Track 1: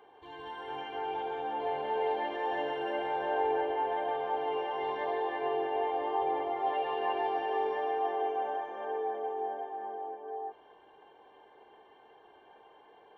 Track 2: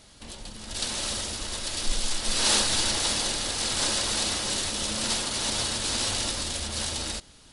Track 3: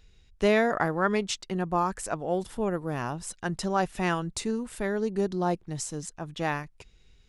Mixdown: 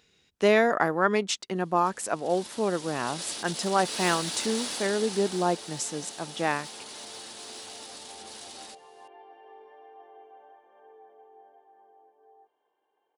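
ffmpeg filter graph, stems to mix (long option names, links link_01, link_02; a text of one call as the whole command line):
ffmpeg -i stem1.wav -i stem2.wav -i stem3.wav -filter_complex "[0:a]adelay=1950,volume=-19dB[link_01];[1:a]asoftclip=type=tanh:threshold=-18dB,alimiter=level_in=0.5dB:limit=-24dB:level=0:latency=1:release=73,volume=-0.5dB,adelay=1550,volume=-1.5dB,afade=type=in:start_time=2.71:duration=0.6:silence=0.316228,afade=type=out:start_time=4.72:duration=0.79:silence=0.375837[link_02];[2:a]volume=2.5dB[link_03];[link_01][link_02][link_03]amix=inputs=3:normalize=0,highpass=220" out.wav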